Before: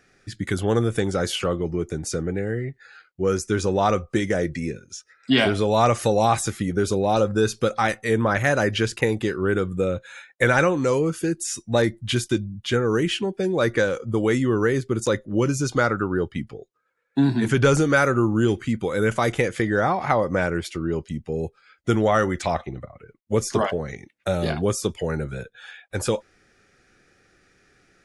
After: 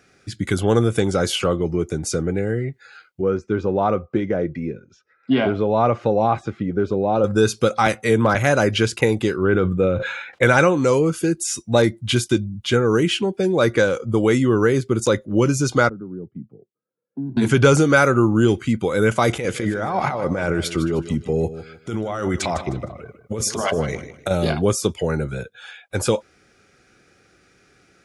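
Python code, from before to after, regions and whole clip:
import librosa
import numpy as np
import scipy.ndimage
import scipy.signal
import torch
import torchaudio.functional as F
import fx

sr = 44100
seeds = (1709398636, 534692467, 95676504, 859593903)

y = fx.chain(x, sr, fx.highpass(hz=140.0, slope=6),
    fx.spacing_loss(db_at_10k=41), at=(3.21, 7.24))
y = fx.chain(y, sr, fx.clip_hard(threshold_db=-11.0),
    fx.band_squash(depth_pct=40), at=(7.86, 8.35))
y = fx.chain(y, sr, fx.lowpass(hz=3000.0, slope=12),
    fx.sustainer(db_per_s=42.0), at=(9.44, 10.43))
y = fx.chain(y, sr, fx.ladder_bandpass(hz=210.0, resonance_pct=30),
    fx.band_squash(depth_pct=40), at=(15.89, 17.37))
y = fx.chain(y, sr, fx.over_compress(threshold_db=-26.0, ratio=-1.0),
    fx.echo_feedback(ms=154, feedback_pct=29, wet_db=-13), at=(19.29, 24.31))
y = scipy.signal.sosfilt(scipy.signal.butter(2, 53.0, 'highpass', fs=sr, output='sos'), y)
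y = fx.notch(y, sr, hz=1800.0, q=8.4)
y = y * 10.0 ** (4.0 / 20.0)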